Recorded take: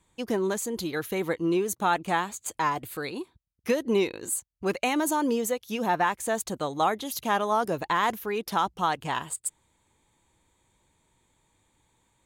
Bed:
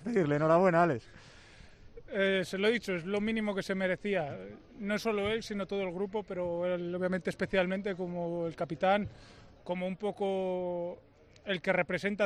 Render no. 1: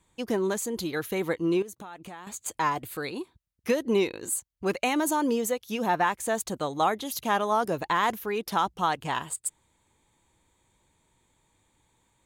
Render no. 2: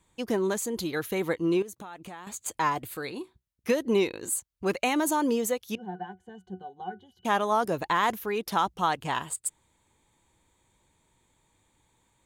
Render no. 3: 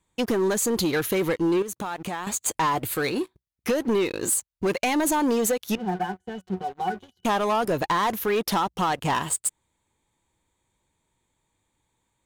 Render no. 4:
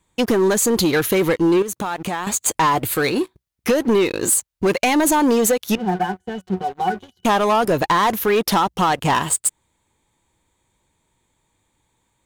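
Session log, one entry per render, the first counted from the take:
1.62–2.27 compressor 12:1, threshold -38 dBFS
2.94–3.69 resonator 62 Hz, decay 0.19 s, mix 40%; 5.75–7.25 octave resonator F#, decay 0.14 s
compressor 3:1, threshold -29 dBFS, peak gain reduction 7.5 dB; sample leveller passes 3
gain +6.5 dB

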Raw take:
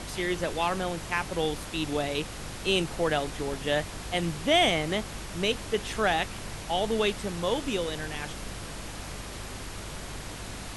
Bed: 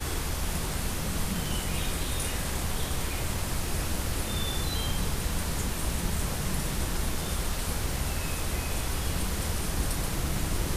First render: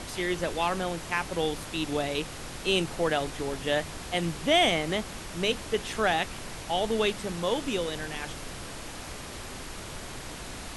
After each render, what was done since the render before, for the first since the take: de-hum 50 Hz, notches 4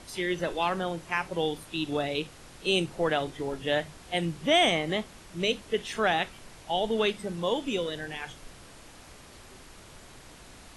noise print and reduce 10 dB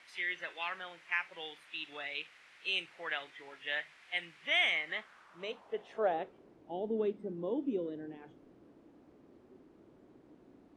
band-pass sweep 2100 Hz -> 310 Hz, 4.79–6.58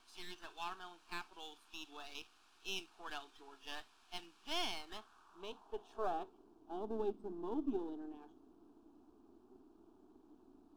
half-wave gain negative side -7 dB; fixed phaser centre 540 Hz, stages 6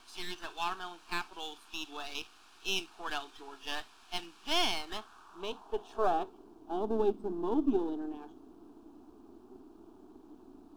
gain +9.5 dB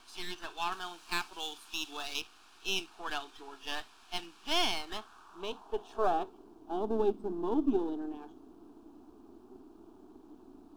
0.72–2.21 high shelf 3300 Hz +7.5 dB

